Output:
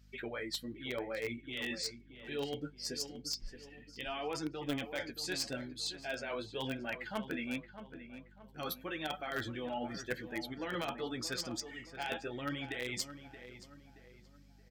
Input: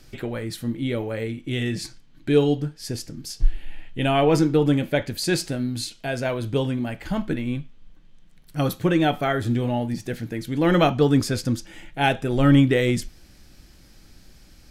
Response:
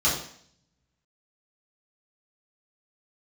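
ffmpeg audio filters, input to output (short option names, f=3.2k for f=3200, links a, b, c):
-filter_complex "[0:a]highpass=f=1.3k:p=1,afftdn=nr=21:nf=-41,equalizer=f=9.8k:t=o:w=0.23:g=-14.5,alimiter=limit=-21.5dB:level=0:latency=1:release=27,areverse,acompressor=threshold=-40dB:ratio=10,areverse,flanger=delay=5:depth=8.3:regen=19:speed=0.87:shape=triangular,asplit=2[a][b];[b]acrusher=bits=5:mix=0:aa=0.000001,volume=-9dB[c];[a][c]amix=inputs=2:normalize=0,aeval=exprs='val(0)+0.000447*(sin(2*PI*50*n/s)+sin(2*PI*2*50*n/s)/2+sin(2*PI*3*50*n/s)/3+sin(2*PI*4*50*n/s)/4+sin(2*PI*5*50*n/s)/5)':c=same,asplit=2[d][e];[e]adelay=625,lowpass=f=2.2k:p=1,volume=-11dB,asplit=2[f][g];[g]adelay=625,lowpass=f=2.2k:p=1,volume=0.42,asplit=2[h][i];[i]adelay=625,lowpass=f=2.2k:p=1,volume=0.42,asplit=2[j][k];[k]adelay=625,lowpass=f=2.2k:p=1,volume=0.42[l];[d][f][h][j][l]amix=inputs=5:normalize=0,volume=7.5dB"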